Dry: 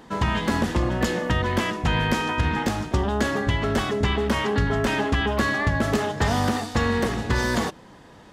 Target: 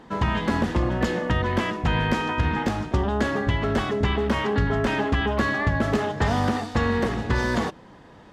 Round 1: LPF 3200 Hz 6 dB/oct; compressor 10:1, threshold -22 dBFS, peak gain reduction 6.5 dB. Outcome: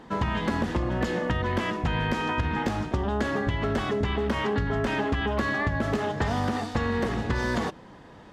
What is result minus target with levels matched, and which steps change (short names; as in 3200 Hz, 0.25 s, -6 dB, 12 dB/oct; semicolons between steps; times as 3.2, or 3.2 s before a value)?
compressor: peak gain reduction +6.5 dB
remove: compressor 10:1, threshold -22 dBFS, peak gain reduction 6.5 dB